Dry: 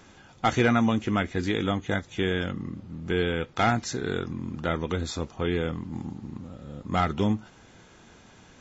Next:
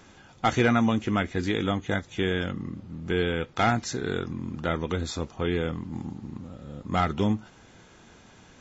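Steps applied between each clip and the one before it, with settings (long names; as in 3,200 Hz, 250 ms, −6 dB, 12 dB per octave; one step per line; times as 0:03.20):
no processing that can be heard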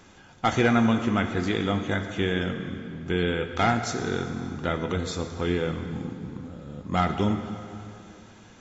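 dense smooth reverb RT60 2.7 s, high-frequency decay 0.8×, DRR 6.5 dB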